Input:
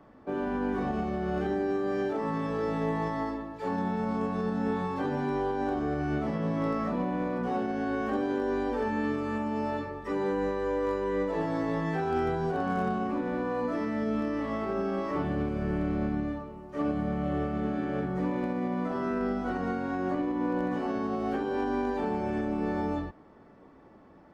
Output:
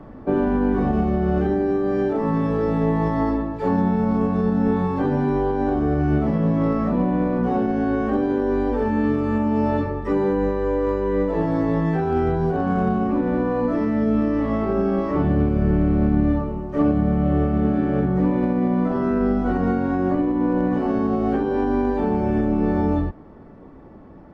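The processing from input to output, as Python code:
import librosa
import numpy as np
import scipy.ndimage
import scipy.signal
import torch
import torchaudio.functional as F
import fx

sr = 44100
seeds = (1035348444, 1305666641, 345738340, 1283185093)

y = fx.rider(x, sr, range_db=10, speed_s=0.5)
y = fx.tilt_eq(y, sr, slope=-2.5)
y = y * 10.0 ** (5.5 / 20.0)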